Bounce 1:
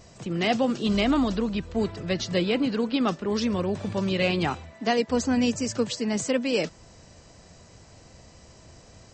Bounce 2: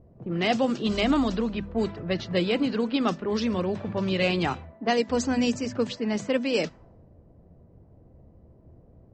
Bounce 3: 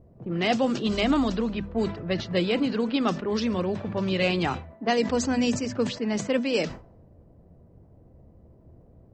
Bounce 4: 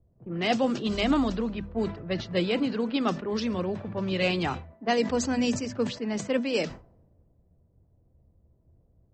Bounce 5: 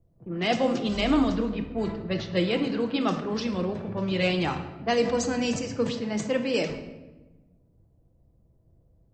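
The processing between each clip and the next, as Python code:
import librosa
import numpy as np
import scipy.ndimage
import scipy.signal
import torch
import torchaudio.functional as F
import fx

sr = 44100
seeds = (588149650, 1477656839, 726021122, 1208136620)

y1 = fx.env_lowpass(x, sr, base_hz=380.0, full_db=-19.0)
y1 = fx.hum_notches(y1, sr, base_hz=50, count=5)
y2 = fx.sustainer(y1, sr, db_per_s=120.0)
y3 = fx.band_widen(y2, sr, depth_pct=40)
y3 = F.gain(torch.from_numpy(y3), -2.0).numpy()
y4 = fx.room_shoebox(y3, sr, seeds[0], volume_m3=620.0, walls='mixed', distance_m=0.71)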